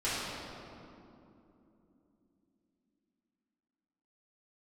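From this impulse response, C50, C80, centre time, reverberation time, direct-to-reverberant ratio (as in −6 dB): −3.5 dB, −1.5 dB, 171 ms, 3.0 s, −12.5 dB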